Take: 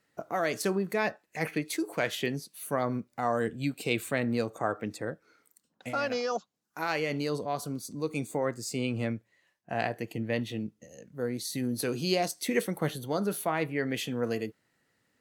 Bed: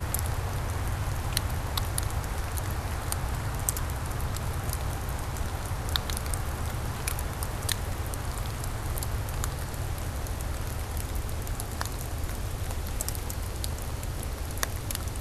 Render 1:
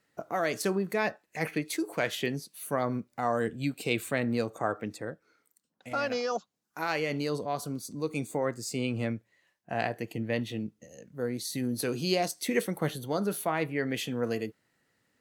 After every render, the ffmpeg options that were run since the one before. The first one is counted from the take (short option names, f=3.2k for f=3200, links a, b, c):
-filter_complex "[0:a]asplit=2[a][b];[a]atrim=end=5.91,asetpts=PTS-STARTPTS,afade=t=out:st=4.73:d=1.18:c=qua:silence=0.501187[c];[b]atrim=start=5.91,asetpts=PTS-STARTPTS,afade=t=in:d=0.004:c=hsin:silence=0.501187[d];[c][d]concat=n=2:v=0:a=1"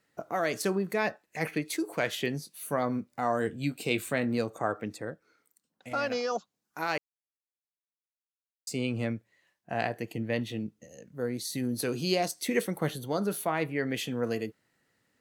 -filter_complex "[0:a]asettb=1/sr,asplit=3[a][b][c];[a]atrim=end=2.334[d];[b]atrim=start=2.33:end=4.38,asetpts=PTS-STARTPTS,afade=t=in:d=0.004:c=qsin,afade=t=out:st=2.046:d=0.004:c=qsin,asplit=2[e][f];[f]adelay=20,volume=-11dB[g];[e][g]amix=inputs=2:normalize=0,atrim=end_sample=90405[h];[c]atrim=start=4.376[i];[d][h]acrossfade=d=0.004:c1=hsin:c2=qsin[j];[j][i]acrossfade=d=0.004:c1=qsin:c2=hsin,asplit=3[k][l][m];[k]atrim=end=6.98,asetpts=PTS-STARTPTS,afade=t=out:st=6.976:d=0.004:c=hsin[n];[l]atrim=start=6.98:end=8.67,asetpts=PTS-STARTPTS,volume=0[o];[m]atrim=start=8.67,asetpts=PTS-STARTPTS,afade=t=in:d=0.004:c=hsin[p];[n][o][p]concat=n=3:v=0:a=1"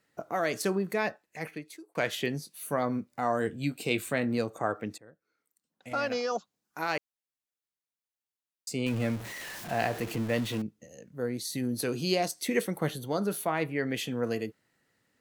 -filter_complex "[0:a]asettb=1/sr,asplit=3[a][b][c];[a]atrim=end=8.864[d];[b]atrim=start=8.86:end=10.62,asetpts=PTS-STARTPTS,afade=t=in:d=0.004:c=qsin,afade=t=out:st=1.756:d=0.004:c=qsin,aeval=exprs='val(0)+0.5*0.0178*sgn(val(0))':c=same[e];[c]atrim=start=10.616[f];[d][e]acrossfade=d=0.004:c1=hsin:c2=qsin[g];[g][f]acrossfade=d=0.004:c1=qsin:c2=hsin,asplit=3[h][i][j];[h]atrim=end=1.95,asetpts=PTS-STARTPTS,afade=t=out:st=0.93:d=1.02[k];[i]atrim=start=1.95:end=4.98,asetpts=PTS-STARTPTS,afade=t=in:d=0.004:c=hsin,afade=t=out:st=3.026:d=0.004:c=hsin:silence=0.133352[l];[j]atrim=start=4.98,asetpts=PTS-STARTPTS,afade=t=in:d=0.94:c=qua:silence=0.133352[m];[k][l][m]concat=n=3:v=0:a=1"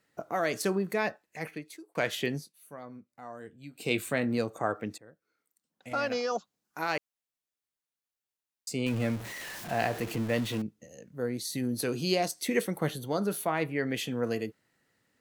-filter_complex "[0:a]asplit=3[a][b][c];[a]atrim=end=2.53,asetpts=PTS-STARTPTS,afade=t=out:st=2.36:d=0.17:silence=0.16788[d];[b]atrim=start=2.53:end=3.72,asetpts=PTS-STARTPTS,volume=-15.5dB[e];[c]atrim=start=3.72,asetpts=PTS-STARTPTS,afade=t=in:d=0.17:silence=0.16788[f];[d][e][f]concat=n=3:v=0:a=1"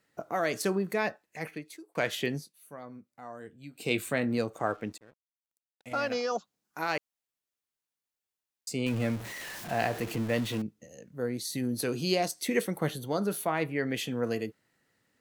-filter_complex "[0:a]asettb=1/sr,asplit=3[a][b][c];[a]atrim=end=4.534[d];[b]atrim=start=4.53:end=6.15,asetpts=PTS-STARTPTS,afade=t=in:d=0.004:c=qsin,afade=t=out:st=1.616:d=0.004:c=qsin,aeval=exprs='sgn(val(0))*max(abs(val(0))-0.00112,0)':c=same[e];[c]atrim=start=6.146[f];[d][e]acrossfade=d=0.004:c1=hsin:c2=qsin[g];[g][f]acrossfade=d=0.004:c1=qsin:c2=hsin"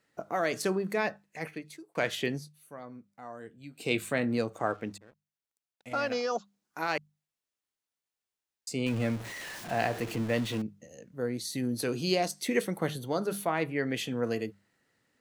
-af "equalizer=f=16k:w=0.76:g=-7.5,bandreject=f=50:t=h:w=6,bandreject=f=100:t=h:w=6,bandreject=f=150:t=h:w=6,bandreject=f=200:t=h:w=6"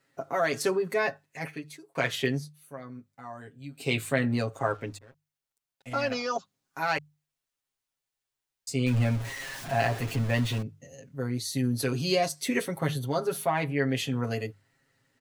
-af "asubboost=boost=2:cutoff=140,aecho=1:1:7.4:0.93"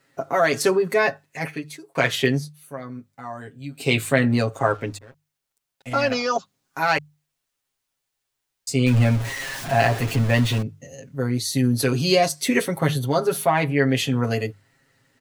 -af "volume=7.5dB"